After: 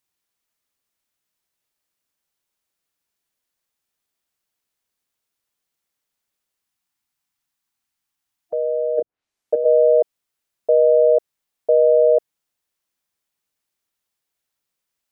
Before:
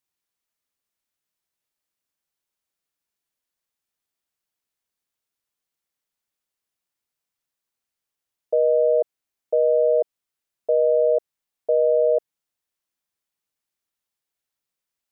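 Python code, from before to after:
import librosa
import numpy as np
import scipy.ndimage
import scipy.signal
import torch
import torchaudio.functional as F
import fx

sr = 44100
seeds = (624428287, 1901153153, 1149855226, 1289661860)

y = fx.spec_box(x, sr, start_s=6.63, length_s=2.35, low_hz=340.0, high_hz=710.0, gain_db=-8)
y = fx.env_lowpass_down(y, sr, base_hz=360.0, full_db=-18.0, at=(8.63, 9.64), fade=0.02)
y = F.gain(torch.from_numpy(y), 4.5).numpy()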